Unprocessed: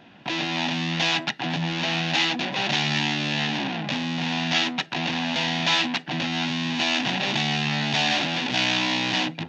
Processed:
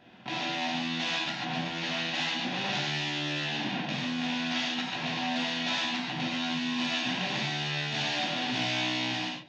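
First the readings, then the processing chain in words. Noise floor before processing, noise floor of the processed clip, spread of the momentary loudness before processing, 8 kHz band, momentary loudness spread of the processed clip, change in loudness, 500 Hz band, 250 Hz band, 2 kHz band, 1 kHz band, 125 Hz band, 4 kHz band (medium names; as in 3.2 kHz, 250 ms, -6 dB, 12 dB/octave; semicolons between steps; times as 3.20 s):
-42 dBFS, -37 dBFS, 5 LU, -7.0 dB, 3 LU, -6.5 dB, -6.0 dB, -5.5 dB, -6.5 dB, -6.0 dB, -8.0 dB, -6.5 dB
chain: fade out at the end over 0.51 s; compression 3:1, threshold -25 dBFS, peak gain reduction 6.5 dB; gated-style reverb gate 170 ms flat, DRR -4.5 dB; trim -8.5 dB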